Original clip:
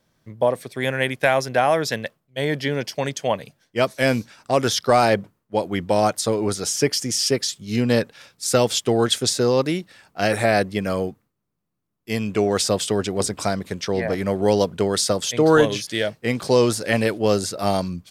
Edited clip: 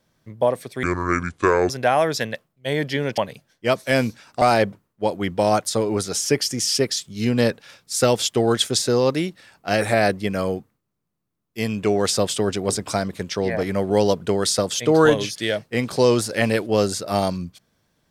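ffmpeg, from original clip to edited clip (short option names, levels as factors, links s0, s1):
-filter_complex "[0:a]asplit=5[s0][s1][s2][s3][s4];[s0]atrim=end=0.834[s5];[s1]atrim=start=0.83:end=1.41,asetpts=PTS-STARTPTS,asetrate=29547,aresample=44100,atrim=end_sample=38176,asetpts=PTS-STARTPTS[s6];[s2]atrim=start=1.406:end=2.892[s7];[s3]atrim=start=3.288:end=4.532[s8];[s4]atrim=start=4.928[s9];[s5][s6]acrossfade=d=0.004:c1=hsin:c2=hsin[s10];[s10][s7]acrossfade=d=0.004:c1=hsin:c2=hsin[s11];[s11][s8]acrossfade=d=0.004:c1=hsin:c2=hsin[s12];[s12][s9]acrossfade=d=0.004:c1=hsin:c2=hsin"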